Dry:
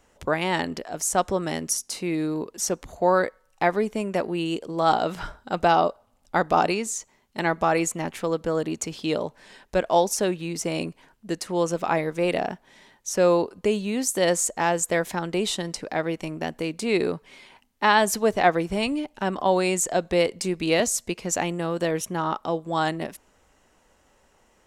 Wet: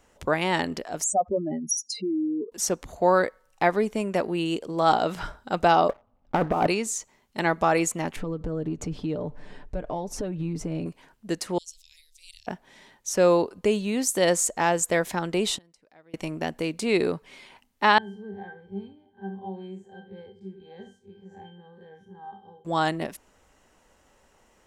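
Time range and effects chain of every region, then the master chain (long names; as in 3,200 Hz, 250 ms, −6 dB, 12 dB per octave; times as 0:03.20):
0:01.04–0:02.52: expanding power law on the bin magnitudes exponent 3.4 + high-pass filter 130 Hz
0:05.89–0:06.67: head-to-tape spacing loss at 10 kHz 43 dB + compressor whose output falls as the input rises −26 dBFS, ratio −0.5 + leveller curve on the samples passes 2
0:08.16–0:10.86: spectral tilt −4 dB per octave + downward compressor 4 to 1, threshold −29 dBFS + comb filter 6.8 ms, depth 41%
0:11.58–0:12.47: inverse Chebyshev band-stop filter 150–1,400 Hz, stop band 60 dB + high-shelf EQ 5,000 Hz −7 dB
0:15.57–0:16.14: gate with flip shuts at −30 dBFS, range −29 dB + one half of a high-frequency compander encoder only
0:17.98–0:22.65: spectrum smeared in time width 91 ms + resonances in every octave G, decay 0.23 s + flutter between parallel walls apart 11.7 metres, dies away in 0.29 s
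whole clip: no processing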